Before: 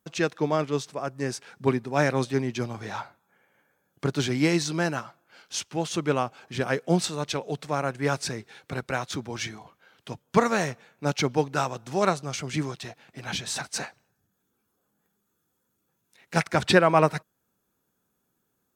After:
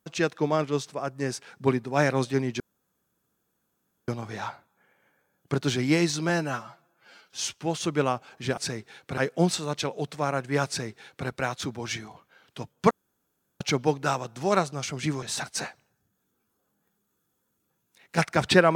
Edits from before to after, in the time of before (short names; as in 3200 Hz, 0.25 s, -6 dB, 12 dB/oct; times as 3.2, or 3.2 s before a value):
2.6 insert room tone 1.48 s
4.81–5.64 stretch 1.5×
8.18–8.78 copy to 6.68
10.41–11.11 room tone
12.73–13.41 cut